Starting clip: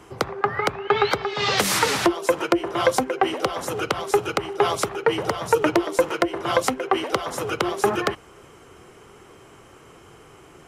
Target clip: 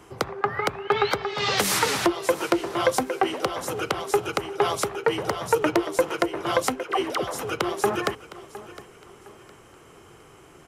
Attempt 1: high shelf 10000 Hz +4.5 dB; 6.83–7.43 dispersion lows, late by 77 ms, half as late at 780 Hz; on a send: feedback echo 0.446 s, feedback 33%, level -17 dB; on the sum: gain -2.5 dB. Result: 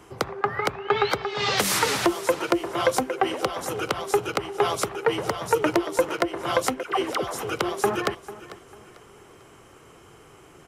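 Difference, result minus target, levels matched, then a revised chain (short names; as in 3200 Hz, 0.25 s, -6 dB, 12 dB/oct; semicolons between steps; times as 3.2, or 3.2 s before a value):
echo 0.265 s early
high shelf 10000 Hz +4.5 dB; 6.83–7.43 dispersion lows, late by 77 ms, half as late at 780 Hz; on a send: feedback echo 0.711 s, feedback 33%, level -17 dB; on the sum: gain -2.5 dB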